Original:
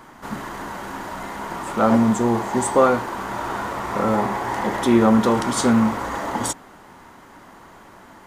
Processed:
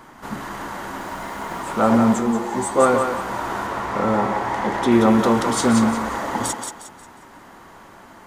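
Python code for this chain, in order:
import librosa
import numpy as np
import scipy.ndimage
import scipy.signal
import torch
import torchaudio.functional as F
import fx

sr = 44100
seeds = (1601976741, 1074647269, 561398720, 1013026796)

y = fx.mod_noise(x, sr, seeds[0], snr_db=28, at=(0.96, 1.6))
y = fx.high_shelf(y, sr, hz=8800.0, db=-11.0, at=(3.67, 4.92))
y = fx.echo_thinned(y, sr, ms=179, feedback_pct=35, hz=420.0, wet_db=-5.0)
y = fx.ensemble(y, sr, at=(2.19, 2.78), fade=0.02)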